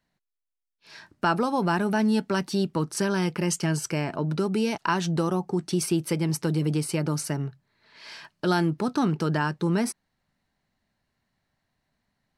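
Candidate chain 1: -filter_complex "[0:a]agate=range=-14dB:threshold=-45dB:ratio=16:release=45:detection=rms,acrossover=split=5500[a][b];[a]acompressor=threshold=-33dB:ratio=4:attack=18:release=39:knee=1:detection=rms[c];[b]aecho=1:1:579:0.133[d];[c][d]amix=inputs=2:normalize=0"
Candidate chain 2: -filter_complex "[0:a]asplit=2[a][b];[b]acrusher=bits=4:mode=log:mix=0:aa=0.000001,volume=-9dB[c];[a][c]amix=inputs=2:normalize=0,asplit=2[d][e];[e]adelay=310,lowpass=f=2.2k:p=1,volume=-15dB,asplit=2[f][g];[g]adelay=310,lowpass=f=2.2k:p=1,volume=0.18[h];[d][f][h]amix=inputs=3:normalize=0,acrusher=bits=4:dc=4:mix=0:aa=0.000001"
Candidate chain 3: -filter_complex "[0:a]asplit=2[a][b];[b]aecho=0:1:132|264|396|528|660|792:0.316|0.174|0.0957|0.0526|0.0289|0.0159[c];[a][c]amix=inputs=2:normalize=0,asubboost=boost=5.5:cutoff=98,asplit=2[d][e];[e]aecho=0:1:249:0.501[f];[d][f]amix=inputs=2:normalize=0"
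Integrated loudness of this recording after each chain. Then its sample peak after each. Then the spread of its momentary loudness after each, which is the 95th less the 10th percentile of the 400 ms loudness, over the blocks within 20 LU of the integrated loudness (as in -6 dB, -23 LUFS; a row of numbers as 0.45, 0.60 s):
-33.0, -23.5, -25.5 LUFS; -16.0, -6.5, -10.0 dBFS; 7, 9, 8 LU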